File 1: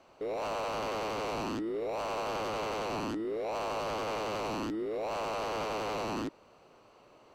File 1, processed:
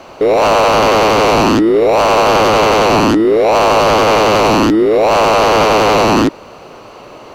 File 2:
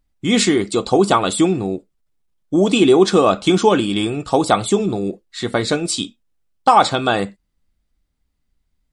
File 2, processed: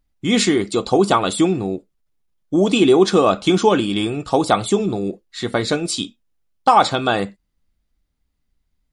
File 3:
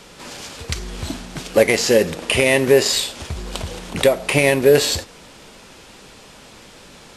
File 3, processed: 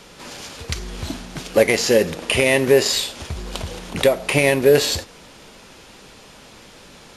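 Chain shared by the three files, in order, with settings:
band-stop 8 kHz, Q 11; peak normalisation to -2 dBFS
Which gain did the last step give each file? +24.5 dB, -1.0 dB, -1.0 dB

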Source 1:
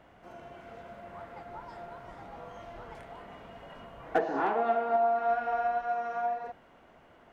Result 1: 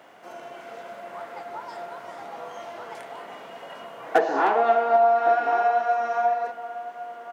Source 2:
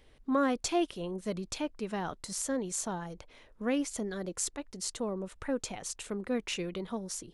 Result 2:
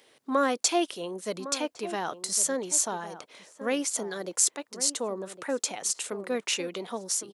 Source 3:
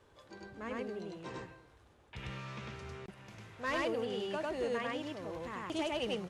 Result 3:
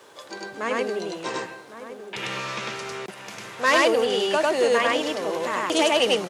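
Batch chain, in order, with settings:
high-pass 120 Hz 24 dB/octave; tone controls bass -14 dB, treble +6 dB; echo from a far wall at 190 m, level -12 dB; peak normalisation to -6 dBFS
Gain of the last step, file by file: +8.5 dB, +5.0 dB, +16.5 dB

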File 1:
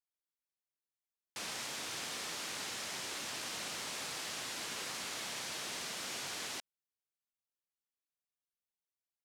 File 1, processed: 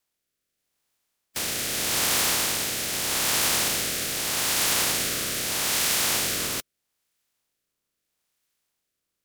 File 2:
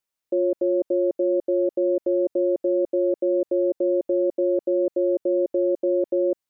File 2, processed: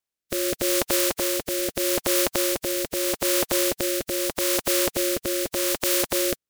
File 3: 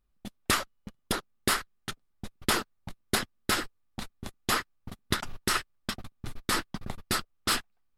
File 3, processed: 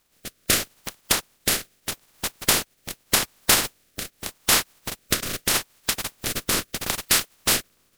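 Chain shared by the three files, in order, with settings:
spectral contrast reduction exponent 0.22; rotary cabinet horn 0.8 Hz; normalise loudness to -23 LUFS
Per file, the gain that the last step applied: +19.5 dB, +1.5 dB, +10.5 dB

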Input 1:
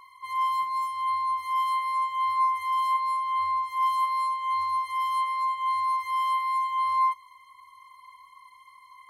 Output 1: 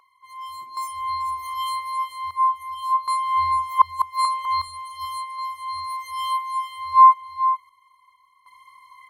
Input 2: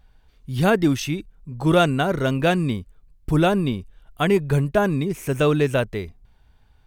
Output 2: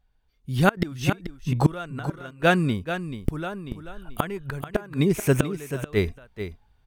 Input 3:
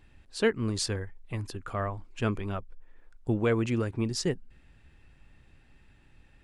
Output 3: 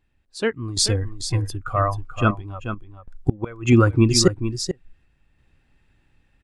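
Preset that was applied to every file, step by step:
spectral noise reduction 13 dB; random-step tremolo 1.3 Hz, depth 80%; dynamic bell 1.4 kHz, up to +7 dB, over -45 dBFS, Q 1.9; inverted gate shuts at -19 dBFS, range -28 dB; on a send: delay 435 ms -10 dB; on the sum: peak normalisation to -3 dBFS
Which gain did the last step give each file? +16.5 dB, +13.5 dB, +15.5 dB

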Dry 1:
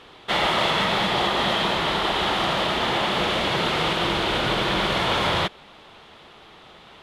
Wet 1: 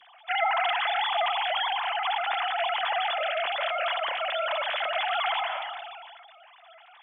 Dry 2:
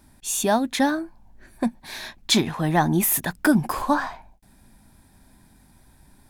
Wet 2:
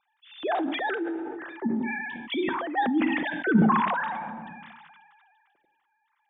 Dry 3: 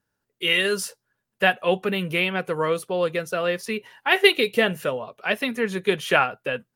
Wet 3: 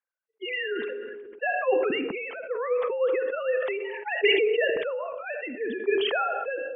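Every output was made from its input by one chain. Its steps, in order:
formants replaced by sine waves; simulated room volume 2200 m³, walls furnished, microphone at 0.78 m; decay stretcher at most 27 dB/s; normalise loudness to -27 LUFS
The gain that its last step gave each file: -5.5 dB, -7.5 dB, -7.5 dB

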